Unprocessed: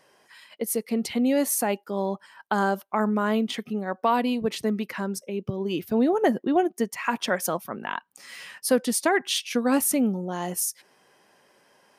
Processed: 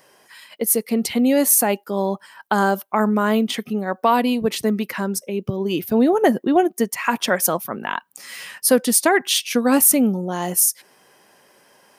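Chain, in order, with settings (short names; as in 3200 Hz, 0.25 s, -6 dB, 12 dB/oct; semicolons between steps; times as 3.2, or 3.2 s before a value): high shelf 11000 Hz +12 dB; gain +5.5 dB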